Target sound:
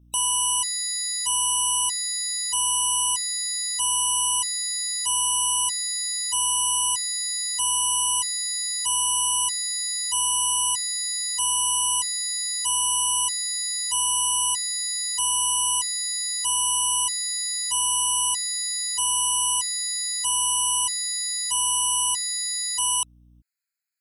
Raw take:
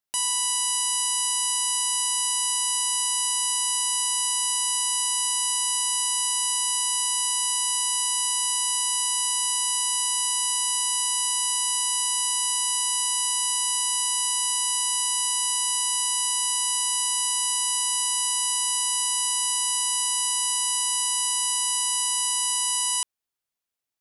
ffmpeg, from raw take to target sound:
ffmpeg -i in.wav -af "aeval=exprs='val(0)+0.00158*(sin(2*PI*60*n/s)+sin(2*PI*2*60*n/s)/2+sin(2*PI*3*60*n/s)/3+sin(2*PI*4*60*n/s)/4+sin(2*PI*5*60*n/s)/5)':channel_layout=same,acontrast=59,afftfilt=real='re*gt(sin(2*PI*0.79*pts/sr)*(1-2*mod(floor(b*sr/1024/1300),2)),0)':imag='im*gt(sin(2*PI*0.79*pts/sr)*(1-2*mod(floor(b*sr/1024/1300),2)),0)':win_size=1024:overlap=0.75,volume=-2.5dB" out.wav

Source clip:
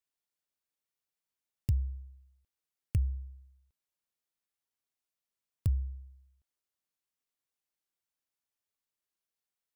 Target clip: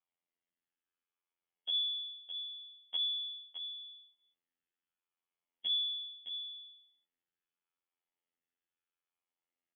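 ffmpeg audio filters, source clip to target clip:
ffmpeg -i in.wav -filter_complex "[0:a]afftfilt=real='re*pow(10,9/40*sin(2*PI*(0.92*log(max(b,1)*sr/1024/100)/log(2)-(0.76)*(pts-256)/sr)))':imag='im*pow(10,9/40*sin(2*PI*(0.92*log(max(b,1)*sr/1024/100)/log(2)-(0.76)*(pts-256)/sr)))':win_size=1024:overlap=0.75,highpass=frequency=42:width=0.5412,highpass=frequency=42:width=1.3066,flanger=delay=6.2:depth=8.2:regen=-86:speed=0.26:shape=triangular,asplit=2[link_01][link_02];[link_02]acompressor=threshold=-41dB:ratio=6,volume=0dB[link_03];[link_01][link_03]amix=inputs=2:normalize=0,lowpass=frequency=3000:width_type=q:width=0.5098,lowpass=frequency=3000:width_type=q:width=0.6013,lowpass=frequency=3000:width_type=q:width=0.9,lowpass=frequency=3000:width_type=q:width=2.563,afreqshift=-3500,afftfilt=real='hypot(re,im)*cos(PI*b)':imag='0':win_size=2048:overlap=0.75,equalizer=frequency=240:width_type=o:width=1.2:gain=9.5,aecho=1:1:613:0.355" out.wav

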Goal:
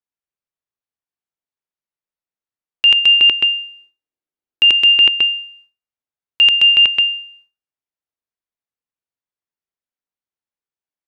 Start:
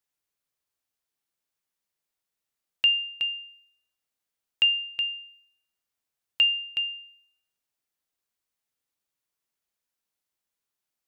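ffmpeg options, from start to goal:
ffmpeg -i in.wav -filter_complex "[0:a]aemphasis=mode=reproduction:type=75kf,agate=range=-33dB:threshold=-58dB:ratio=3:detection=peak,asettb=1/sr,asplit=3[link_01][link_02][link_03];[link_01]atrim=end=2.994[link_04];[link_02]atrim=start=2.99:end=5.13,asetpts=PTS-STARTPTS,afade=type=in:duration=0.004:curve=qsin,afade=type=out:start_time=2.136:duration=0.004:curve=qsin,equalizer=frequency=340:width_type=o:width=0.8:gain=10[link_05];[link_03]atrim=start=5.126[link_06];[link_04][link_05]acrossfade=duration=0.004:curve1=hsin:curve2=qsin[link_07];[link_07][link_06]acrossfade=duration=0.004:curve1=qsin:curve2=hsin,aecho=1:1:87|215:0.473|0.335,alimiter=level_in=31.5dB:limit=-1dB:release=50:level=0:latency=1,volume=-4.5dB" out.wav

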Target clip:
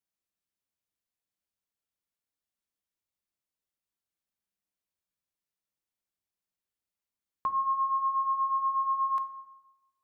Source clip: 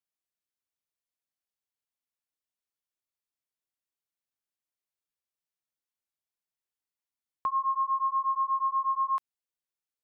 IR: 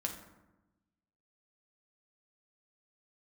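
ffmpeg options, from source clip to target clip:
-filter_complex "[0:a]asplit=2[link_01][link_02];[1:a]atrim=start_sample=2205,lowshelf=frequency=420:gain=9[link_03];[link_02][link_03]afir=irnorm=-1:irlink=0,volume=-3.5dB[link_04];[link_01][link_04]amix=inputs=2:normalize=0,volume=-5dB"

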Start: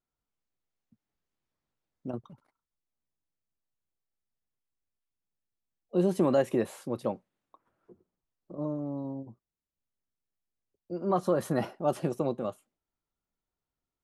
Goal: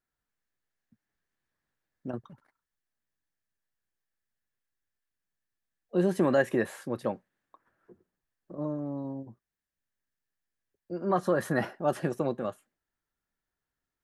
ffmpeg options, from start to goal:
ffmpeg -i in.wav -af "equalizer=frequency=1700:width=3.4:gain=12.5" out.wav

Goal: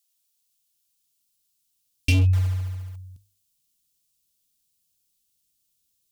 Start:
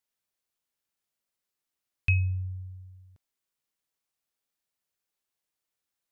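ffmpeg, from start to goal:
ffmpeg -i in.wav -filter_complex "[0:a]bandreject=frequency=50:width_type=h:width=6,bandreject=frequency=100:width_type=h:width=6,asplit=2[link_01][link_02];[link_02]asoftclip=type=tanh:threshold=-24.5dB,volume=-3.5dB[link_03];[link_01][link_03]amix=inputs=2:normalize=0,asubboost=boost=10.5:cutoff=230,aeval=exprs='0.531*(abs(mod(val(0)/0.531+3,4)-2)-1)':channel_layout=same,aexciter=amount=6.1:drive=4.3:freq=2700,asettb=1/sr,asplit=3[link_04][link_05][link_06];[link_04]atrim=end=2.334[link_07];[link_05]atrim=start=2.33:end=2.96,asetpts=PTS-STARTPTS,afade=type=in:duration=0.004:curve=qsin,afade=type=out:start_time=0.626:duration=0.004:curve=qsin,acrusher=bits=5:mode=log:mix=0:aa=0.000001[link_08];[link_06]atrim=start=2.956[link_09];[link_07][link_08]acrossfade=duration=0.004:curve1=hsin:curve2=qsin[link_10];[link_10][link_09]acrossfade=duration=0.004:curve1=qsin:curve2=hsin,volume=-8.5dB" out.wav

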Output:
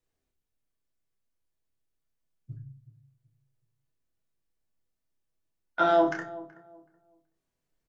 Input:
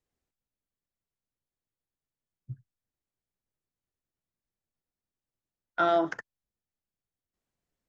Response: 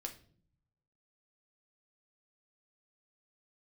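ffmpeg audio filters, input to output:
-filter_complex "[0:a]asplit=2[link_01][link_02];[link_02]adelay=28,volume=-6dB[link_03];[link_01][link_03]amix=inputs=2:normalize=0,asplit=2[link_04][link_05];[link_05]adelay=376,lowpass=frequency=940:poles=1,volume=-17dB,asplit=2[link_06][link_07];[link_07]adelay=376,lowpass=frequency=940:poles=1,volume=0.27,asplit=2[link_08][link_09];[link_09]adelay=376,lowpass=frequency=940:poles=1,volume=0.27[link_10];[link_04][link_06][link_08][link_10]amix=inputs=4:normalize=0[link_11];[1:a]atrim=start_sample=2205,asetrate=57330,aresample=44100[link_12];[link_11][link_12]afir=irnorm=-1:irlink=0,volume=6dB"

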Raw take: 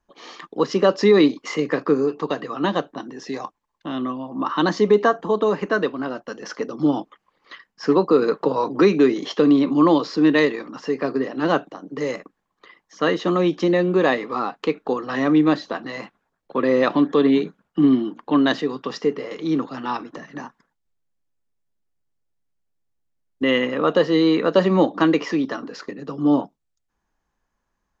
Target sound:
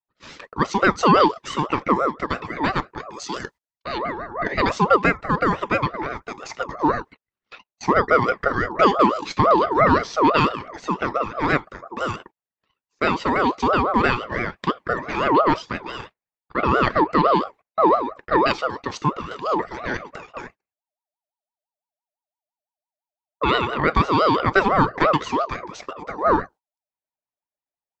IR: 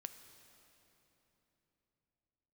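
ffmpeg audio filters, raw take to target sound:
-filter_complex "[0:a]agate=range=-24dB:threshold=-42dB:ratio=16:detection=peak,asettb=1/sr,asplit=3[link_01][link_02][link_03];[link_01]atrim=end=3.134[link_04];[link_02]atrim=start=3.13:end=3.98,asetpts=PTS-STARTPTS,afade=type=in:duration=0.004:curve=qsin,afade=type=out:start_time=0.846:duration=0.004:curve=qsin,highshelf=frequency=2600:width_type=q:width=1.5:gain=6.5[link_05];[link_03]atrim=start=3.976[link_06];[link_04][link_05]acrossfade=duration=0.004:curve1=hsin:curve2=qsin[link_07];[link_07][link_06]acrossfade=duration=0.004:curve1=qsin:curve2=hsin,aeval=exprs='val(0)*sin(2*PI*780*n/s+780*0.25/5.9*sin(2*PI*5.9*n/s))':channel_layout=same,volume=2dB"

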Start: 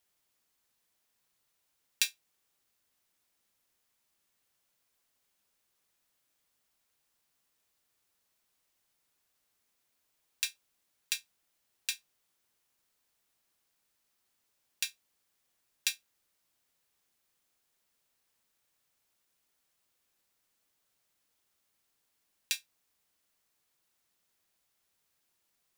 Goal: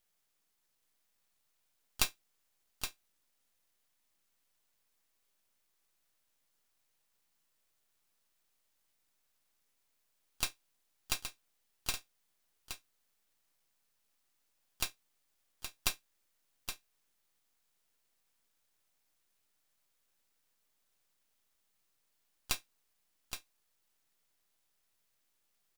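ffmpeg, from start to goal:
ffmpeg -i in.wav -filter_complex "[0:a]asplit=2[link_01][link_02];[link_02]asetrate=52444,aresample=44100,atempo=0.840896,volume=-18dB[link_03];[link_01][link_03]amix=inputs=2:normalize=0,aeval=exprs='max(val(0),0)':channel_layout=same,aecho=1:1:820:0.376,volume=2dB" out.wav

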